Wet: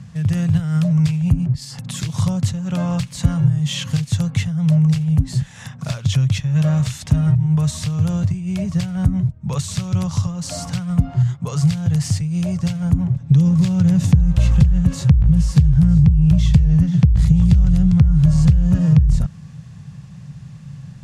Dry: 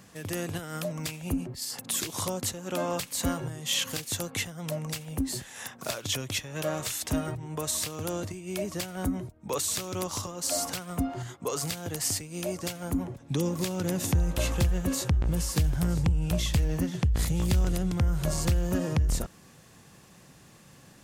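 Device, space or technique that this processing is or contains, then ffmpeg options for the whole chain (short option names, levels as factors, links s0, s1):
jukebox: -af "lowpass=6900,lowshelf=f=220:t=q:w=3:g=14,acompressor=threshold=0.251:ratio=4,volume=1.33"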